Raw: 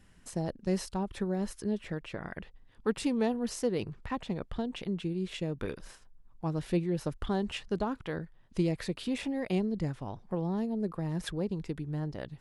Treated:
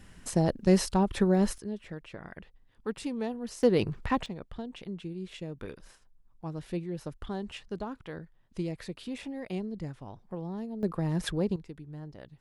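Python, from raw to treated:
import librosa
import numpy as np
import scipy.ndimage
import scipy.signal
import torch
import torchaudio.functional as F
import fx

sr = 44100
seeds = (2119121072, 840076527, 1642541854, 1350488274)

y = fx.gain(x, sr, db=fx.steps((0.0, 8.0), (1.58, -4.5), (3.63, 7.0), (4.26, -5.0), (10.83, 4.0), (11.56, -8.0)))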